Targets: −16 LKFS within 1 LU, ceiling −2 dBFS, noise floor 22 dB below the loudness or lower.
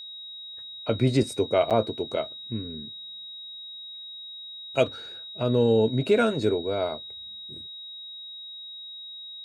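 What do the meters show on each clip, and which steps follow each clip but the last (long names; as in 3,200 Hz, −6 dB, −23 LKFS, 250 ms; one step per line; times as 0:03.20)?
number of dropouts 1; longest dropout 7.5 ms; interfering tone 3,800 Hz; level of the tone −38 dBFS; integrated loudness −28.0 LKFS; sample peak −9.5 dBFS; target loudness −16.0 LKFS
→ repair the gap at 0:01.70, 7.5 ms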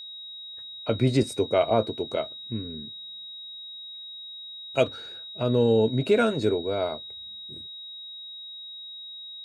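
number of dropouts 0; interfering tone 3,800 Hz; level of the tone −38 dBFS
→ notch filter 3,800 Hz, Q 30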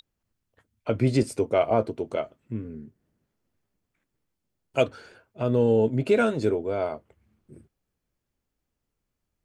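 interfering tone none found; integrated loudness −25.5 LKFS; sample peak −9.5 dBFS; target loudness −16.0 LKFS
→ level +9.5 dB
brickwall limiter −2 dBFS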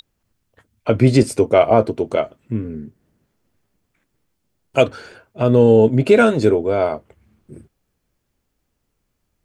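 integrated loudness −16.5 LKFS; sample peak −2.0 dBFS; background noise floor −73 dBFS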